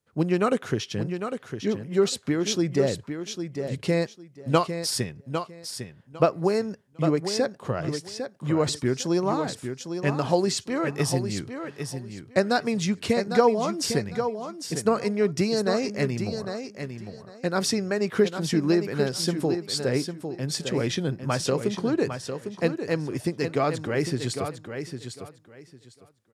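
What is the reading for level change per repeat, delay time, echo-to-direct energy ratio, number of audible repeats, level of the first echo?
-14.0 dB, 0.803 s, -8.0 dB, 2, -8.0 dB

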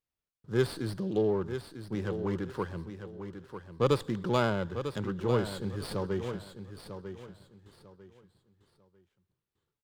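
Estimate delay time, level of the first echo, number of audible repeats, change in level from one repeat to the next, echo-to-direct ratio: 0.947 s, -9.5 dB, 3, -11.5 dB, -9.0 dB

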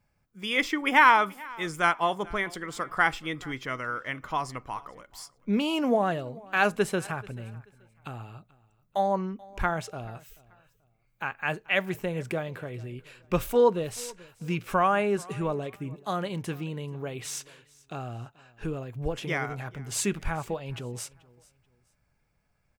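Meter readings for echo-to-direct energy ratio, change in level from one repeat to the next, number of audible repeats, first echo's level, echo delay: -22.5 dB, -11.0 dB, 2, -23.0 dB, 0.434 s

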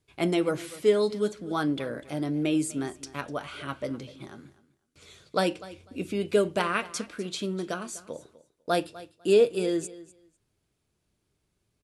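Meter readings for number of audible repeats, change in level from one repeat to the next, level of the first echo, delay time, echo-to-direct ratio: 2, -15.5 dB, -18.0 dB, 0.249 s, -18.0 dB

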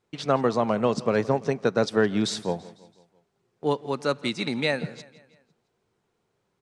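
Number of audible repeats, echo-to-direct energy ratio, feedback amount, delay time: 3, -18.5 dB, 51%, 0.167 s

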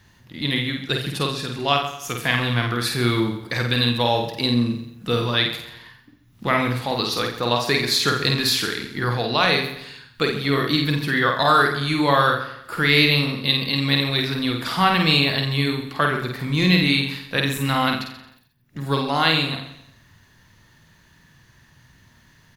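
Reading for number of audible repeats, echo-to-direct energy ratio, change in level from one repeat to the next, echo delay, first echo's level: 9, -2.5 dB, no steady repeat, 50 ms, -4.0 dB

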